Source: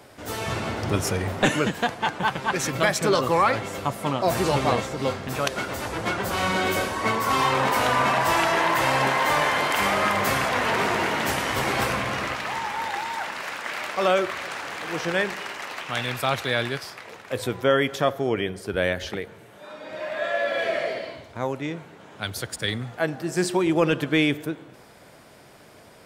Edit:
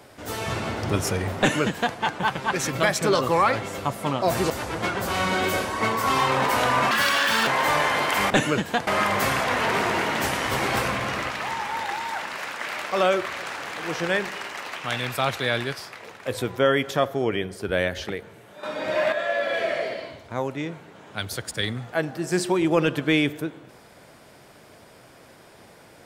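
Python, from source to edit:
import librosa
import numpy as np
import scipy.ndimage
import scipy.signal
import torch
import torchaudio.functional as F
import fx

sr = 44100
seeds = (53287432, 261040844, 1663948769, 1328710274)

y = fx.edit(x, sr, fx.duplicate(start_s=1.39, length_s=0.57, to_s=9.92),
    fx.cut(start_s=4.5, length_s=1.23),
    fx.speed_span(start_s=8.14, length_s=0.95, speed=1.69),
    fx.clip_gain(start_s=19.68, length_s=0.49, db=9.0), tone=tone)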